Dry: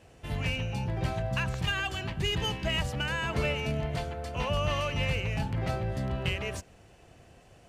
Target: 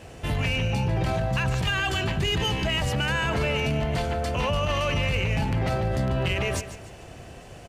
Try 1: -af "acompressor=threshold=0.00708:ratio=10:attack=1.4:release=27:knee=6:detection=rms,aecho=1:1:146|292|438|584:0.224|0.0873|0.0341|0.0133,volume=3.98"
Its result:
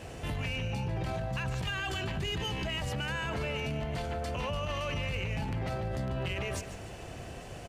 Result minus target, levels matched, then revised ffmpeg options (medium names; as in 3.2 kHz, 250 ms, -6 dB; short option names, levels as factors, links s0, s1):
compression: peak gain reduction +9 dB
-af "acompressor=threshold=0.0224:ratio=10:attack=1.4:release=27:knee=6:detection=rms,aecho=1:1:146|292|438|584:0.224|0.0873|0.0341|0.0133,volume=3.98"